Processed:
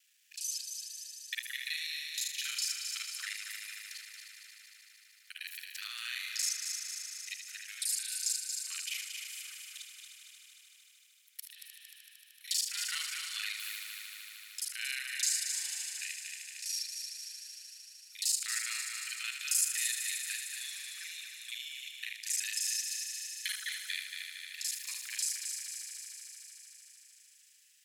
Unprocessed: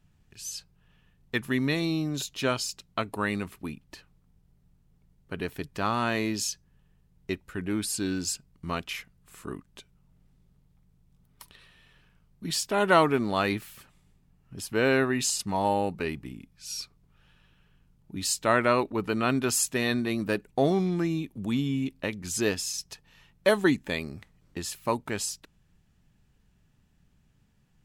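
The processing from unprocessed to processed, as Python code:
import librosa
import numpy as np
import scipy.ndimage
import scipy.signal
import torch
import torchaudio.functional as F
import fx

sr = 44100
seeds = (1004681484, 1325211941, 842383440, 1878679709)

y = fx.local_reverse(x, sr, ms=34.0)
y = scipy.signal.sosfilt(scipy.signal.butter(6, 1800.0, 'highpass', fs=sr, output='sos'), y)
y = fx.high_shelf(y, sr, hz=3400.0, db=11.5)
y = fx.echo_heads(y, sr, ms=76, heads='first and third', feedback_pct=72, wet_db=-8.5)
y = fx.band_squash(y, sr, depth_pct=40)
y = y * 10.0 ** (-8.5 / 20.0)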